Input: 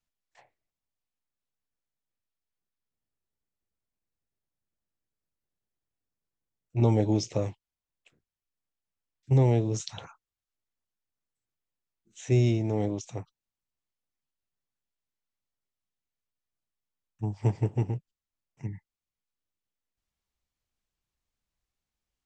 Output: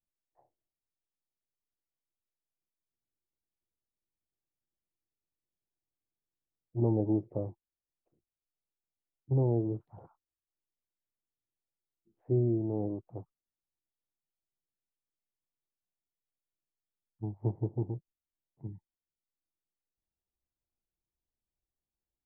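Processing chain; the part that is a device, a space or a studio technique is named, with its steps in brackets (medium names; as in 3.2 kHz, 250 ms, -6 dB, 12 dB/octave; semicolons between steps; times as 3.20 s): under water (low-pass 870 Hz 24 dB/octave; peaking EQ 340 Hz +7 dB 0.26 oct); trim -6.5 dB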